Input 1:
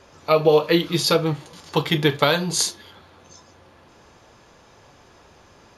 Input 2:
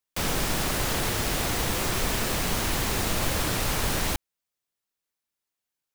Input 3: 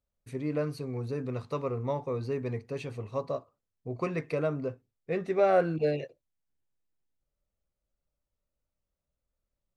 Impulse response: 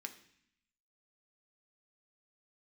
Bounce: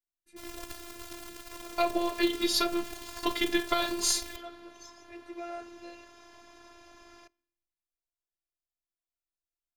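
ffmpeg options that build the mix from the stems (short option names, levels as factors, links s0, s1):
-filter_complex "[0:a]aeval=exprs='if(lt(val(0),0),0.708*val(0),val(0))':c=same,acompressor=threshold=0.0891:ratio=6,adelay=1500,volume=1.12,asplit=2[s0][s1];[s1]volume=0.266[s2];[1:a]aeval=exprs='0.224*(cos(1*acos(clip(val(0)/0.224,-1,1)))-cos(1*PI/2))+0.0708*(cos(3*acos(clip(val(0)/0.224,-1,1)))-cos(3*PI/2))':c=same,adelay=200,volume=0.631[s3];[2:a]highshelf=f=2400:g=8.5,volume=0.188,asplit=2[s4][s5];[s5]volume=0.631[s6];[3:a]atrim=start_sample=2205[s7];[s2][s6]amix=inputs=2:normalize=0[s8];[s8][s7]afir=irnorm=-1:irlink=0[s9];[s0][s3][s4][s9]amix=inputs=4:normalize=0,afftfilt=real='hypot(re,im)*cos(PI*b)':imag='0':win_size=512:overlap=0.75"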